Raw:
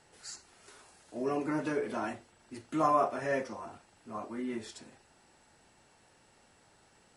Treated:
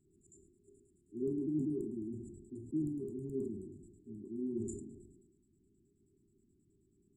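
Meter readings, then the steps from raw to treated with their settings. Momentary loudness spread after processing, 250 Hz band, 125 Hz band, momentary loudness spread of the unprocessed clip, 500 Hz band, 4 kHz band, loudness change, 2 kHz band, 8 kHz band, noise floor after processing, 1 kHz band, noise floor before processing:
17 LU, -0.5 dB, +2.0 dB, 20 LU, -7.5 dB, under -30 dB, -6.0 dB, under -40 dB, -8.0 dB, -73 dBFS, under -40 dB, -65 dBFS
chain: LFO low-pass square 9.4 Hz 610–4200 Hz; FFT band-reject 410–7000 Hz; dynamic EQ 120 Hz, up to +4 dB, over -58 dBFS, Q 2.7; Schroeder reverb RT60 0.39 s, combs from 31 ms, DRR 16 dB; sustainer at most 46 dB/s; gain -3 dB

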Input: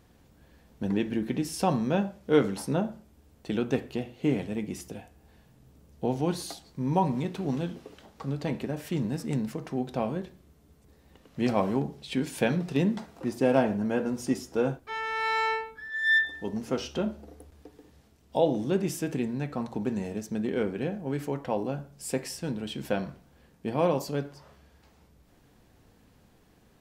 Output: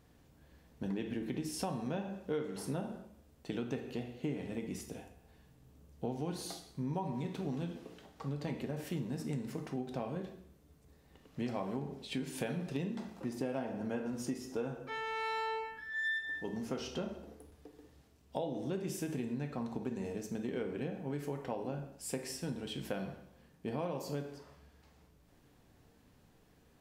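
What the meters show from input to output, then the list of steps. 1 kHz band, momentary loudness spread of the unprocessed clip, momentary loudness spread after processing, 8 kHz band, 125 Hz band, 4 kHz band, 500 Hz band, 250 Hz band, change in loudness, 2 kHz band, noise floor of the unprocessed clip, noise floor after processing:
-10.0 dB, 11 LU, 9 LU, -6.0 dB, -8.5 dB, -7.5 dB, -10.5 dB, -9.5 dB, -10.0 dB, -10.5 dB, -61 dBFS, -65 dBFS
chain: plate-style reverb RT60 0.67 s, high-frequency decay 0.95×, DRR 6 dB; compressor 6:1, threshold -28 dBFS, peak gain reduction 14 dB; gain -5.5 dB

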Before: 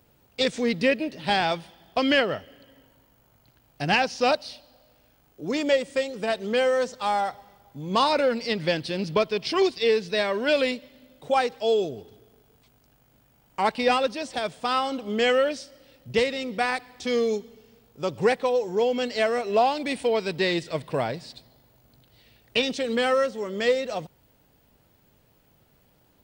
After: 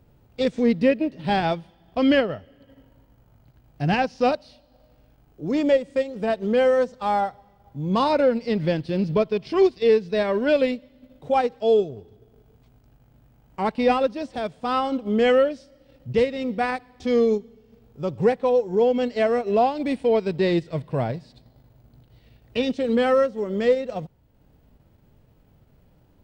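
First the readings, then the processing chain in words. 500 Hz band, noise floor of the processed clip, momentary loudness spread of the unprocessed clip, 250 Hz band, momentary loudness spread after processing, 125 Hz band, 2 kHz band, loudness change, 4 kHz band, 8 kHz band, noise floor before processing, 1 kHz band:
+3.5 dB, -59 dBFS, 9 LU, +5.5 dB, 10 LU, +6.5 dB, -3.5 dB, +2.5 dB, -6.0 dB, n/a, -62 dBFS, +0.5 dB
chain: harmonic-percussive split harmonic +5 dB; tilt -2.5 dB/oct; transient shaper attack -2 dB, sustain -6 dB; gain -3 dB

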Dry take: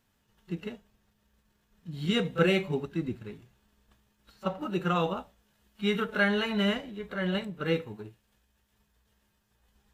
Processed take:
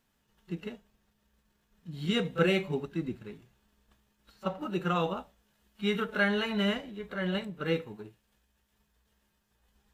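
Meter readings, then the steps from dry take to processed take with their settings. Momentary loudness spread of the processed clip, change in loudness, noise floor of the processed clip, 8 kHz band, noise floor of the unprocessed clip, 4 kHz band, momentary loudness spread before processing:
17 LU, -1.5 dB, -75 dBFS, n/a, -73 dBFS, -1.5 dB, 17 LU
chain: bell 100 Hz -7 dB 0.39 oct; gain -1.5 dB

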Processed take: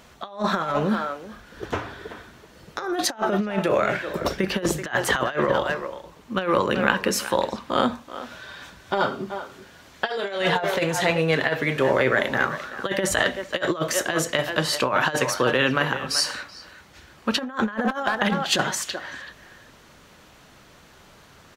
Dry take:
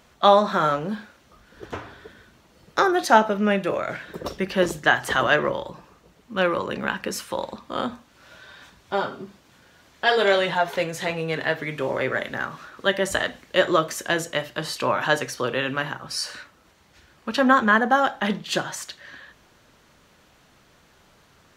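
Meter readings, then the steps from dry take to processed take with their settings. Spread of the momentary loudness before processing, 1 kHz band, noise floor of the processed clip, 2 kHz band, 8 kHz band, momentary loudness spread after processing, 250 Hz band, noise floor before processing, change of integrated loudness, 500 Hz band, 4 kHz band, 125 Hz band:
14 LU, -3.0 dB, -51 dBFS, -0.5 dB, +5.5 dB, 16 LU, +0.5 dB, -58 dBFS, -0.5 dB, -0.5 dB, +1.5 dB, +3.5 dB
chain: speakerphone echo 0.38 s, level -13 dB; negative-ratio compressor -24 dBFS, ratio -0.5; gain +2.5 dB

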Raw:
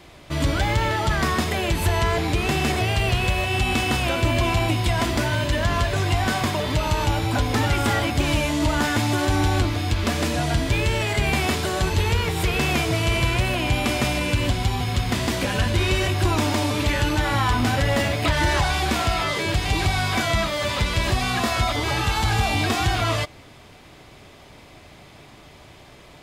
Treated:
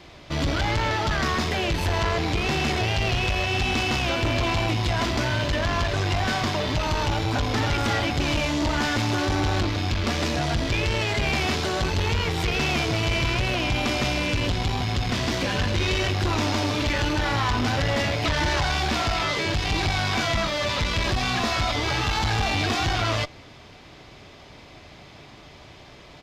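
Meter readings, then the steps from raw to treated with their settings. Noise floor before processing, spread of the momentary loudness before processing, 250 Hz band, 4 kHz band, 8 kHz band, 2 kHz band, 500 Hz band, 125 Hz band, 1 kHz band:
-47 dBFS, 2 LU, -2.5 dB, 0.0 dB, -3.5 dB, -1.5 dB, -2.0 dB, -3.0 dB, -2.0 dB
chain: tube stage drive 22 dB, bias 0.55; resonant high shelf 7200 Hz -8.5 dB, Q 1.5; downsampling 32000 Hz; gain +2.5 dB

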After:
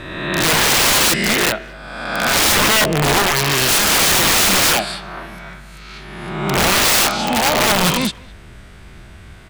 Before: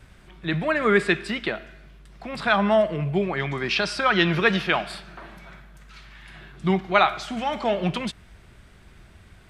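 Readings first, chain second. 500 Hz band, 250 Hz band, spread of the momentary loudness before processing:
+3.0 dB, +4.0 dB, 15 LU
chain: spectral swells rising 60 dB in 1.35 s; wrapped overs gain 16.5 dB; speakerphone echo 0.21 s, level -21 dB; gain +7.5 dB

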